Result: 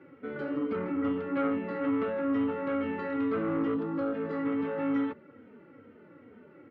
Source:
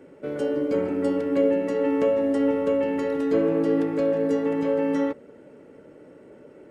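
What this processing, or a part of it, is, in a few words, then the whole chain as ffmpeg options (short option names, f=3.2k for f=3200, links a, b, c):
barber-pole flanger into a guitar amplifier: -filter_complex "[0:a]asplit=2[a][b];[b]adelay=3,afreqshift=-2.3[c];[a][c]amix=inputs=2:normalize=1,asoftclip=type=tanh:threshold=-21.5dB,highpass=89,equalizer=f=94:t=q:w=4:g=9,equalizer=f=230:t=q:w=4:g=6,equalizer=f=420:t=q:w=4:g=-3,equalizer=f=610:t=q:w=4:g=-6,equalizer=f=1.3k:t=q:w=4:g=9,equalizer=f=2.1k:t=q:w=4:g=5,lowpass=f=3.7k:w=0.5412,lowpass=f=3.7k:w=1.3066,asettb=1/sr,asplit=3[d][e][f];[d]atrim=end=0.764[g];[e]atrim=start=0.76:end=1.71,asetpts=PTS-STARTPTS,afade=t=in:d=0.004:c=qsin,afade=t=out:st=0.946:d=0.004:c=qsin,lowpass=5.1k[h];[f]atrim=start=1.706[i];[g][h]acrossfade=d=0.004:c1=hsin:c2=qsin[j];[j][i]acrossfade=d=0.004:c1=qsin:c2=hsin,asettb=1/sr,asplit=3[k][l][m];[k]atrim=end=3.744[n];[l]atrim=start=3.74:end=4.15,asetpts=PTS-STARTPTS,afade=t=in:d=0.004:c=qsin,afade=t=out:st=0.406:d=0.004:c=qsin,equalizer=f=2.2k:t=o:w=0.68:g=-11.5[o];[m]atrim=start=4.146[p];[n][o]acrossfade=d=0.004:c1=hsin:c2=qsin[q];[q][p]acrossfade=d=0.004:c1=qsin:c2=hsin,volume=-2dB"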